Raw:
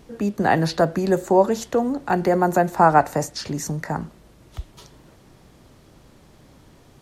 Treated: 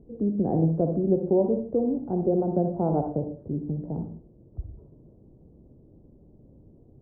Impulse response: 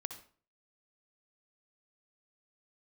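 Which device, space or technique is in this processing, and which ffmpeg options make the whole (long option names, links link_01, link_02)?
next room: -filter_complex "[0:a]lowpass=frequency=510:width=0.5412,lowpass=frequency=510:width=1.3066[link_01];[1:a]atrim=start_sample=2205[link_02];[link_01][link_02]afir=irnorm=-1:irlink=0,asettb=1/sr,asplit=3[link_03][link_04][link_05];[link_03]atrim=end=3.204[link_06];[link_04]atrim=start=3.2:end=3.98,asetpts=PTS-STARTPTS,afade=type=in:duration=0.004:curve=qsin,afade=type=out:start_time=0.776:duration=0.004:curve=qsin,lowpass=1300[link_07];[link_05]atrim=start=3.976[link_08];[link_06][link_07]acrossfade=duration=0.004:curve1=hsin:curve2=qsin[link_09];[link_09][link_08]acrossfade=duration=0.004:curve1=qsin:curve2=hsin"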